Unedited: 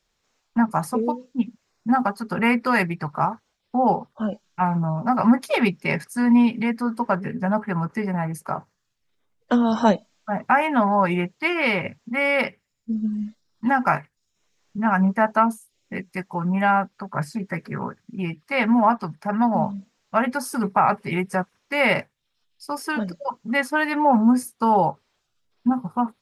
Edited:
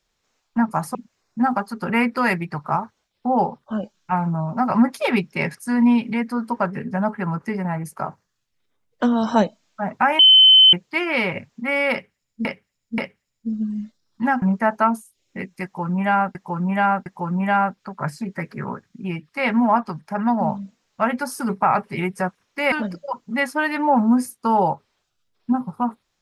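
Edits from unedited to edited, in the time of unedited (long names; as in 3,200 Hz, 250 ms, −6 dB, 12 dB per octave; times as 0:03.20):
0:00.95–0:01.44: remove
0:10.68–0:11.22: beep over 3,060 Hz −7 dBFS
0:12.41–0:12.94: repeat, 3 plays
0:13.85–0:14.98: remove
0:16.20–0:16.91: repeat, 3 plays
0:21.86–0:22.89: remove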